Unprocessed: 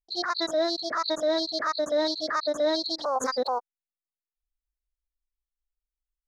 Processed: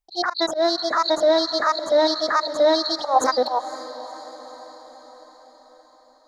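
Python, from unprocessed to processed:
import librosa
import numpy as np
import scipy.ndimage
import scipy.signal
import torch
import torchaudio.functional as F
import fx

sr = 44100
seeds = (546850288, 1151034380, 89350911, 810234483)

y = fx.peak_eq(x, sr, hz=820.0, db=8.0, octaves=0.58)
y = fx.hum_notches(y, sr, base_hz=60, count=5)
y = fx.auto_swell(y, sr, attack_ms=114.0)
y = fx.echo_diffused(y, sr, ms=505, feedback_pct=57, wet_db=-15.0)
y = F.gain(torch.from_numpy(y), 5.5).numpy()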